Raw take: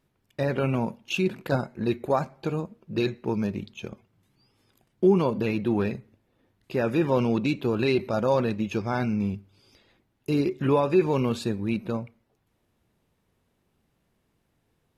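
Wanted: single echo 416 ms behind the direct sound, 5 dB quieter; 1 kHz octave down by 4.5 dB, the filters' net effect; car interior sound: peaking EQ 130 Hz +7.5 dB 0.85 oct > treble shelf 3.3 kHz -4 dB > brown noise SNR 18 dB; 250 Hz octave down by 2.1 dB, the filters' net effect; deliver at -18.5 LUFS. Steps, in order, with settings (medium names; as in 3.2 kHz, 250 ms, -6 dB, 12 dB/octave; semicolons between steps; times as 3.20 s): peaking EQ 130 Hz +7.5 dB 0.85 oct; peaking EQ 250 Hz -5 dB; peaking EQ 1 kHz -5 dB; treble shelf 3.3 kHz -4 dB; delay 416 ms -5 dB; brown noise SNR 18 dB; trim +7.5 dB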